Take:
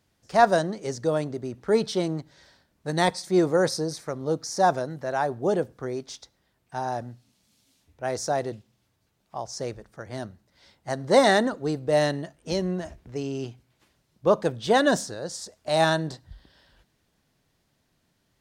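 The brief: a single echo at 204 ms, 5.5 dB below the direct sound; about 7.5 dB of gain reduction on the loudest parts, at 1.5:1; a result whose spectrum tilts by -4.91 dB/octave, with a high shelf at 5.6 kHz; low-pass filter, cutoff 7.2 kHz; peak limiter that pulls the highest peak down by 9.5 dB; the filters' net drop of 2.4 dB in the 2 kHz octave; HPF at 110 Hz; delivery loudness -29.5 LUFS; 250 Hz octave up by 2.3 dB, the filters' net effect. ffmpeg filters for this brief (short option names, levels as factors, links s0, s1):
-af "highpass=110,lowpass=7200,equalizer=f=250:t=o:g=3.5,equalizer=f=2000:t=o:g=-3.5,highshelf=f=5600:g=5,acompressor=threshold=0.0224:ratio=1.5,alimiter=limit=0.0841:level=0:latency=1,aecho=1:1:204:0.531,volume=1.41"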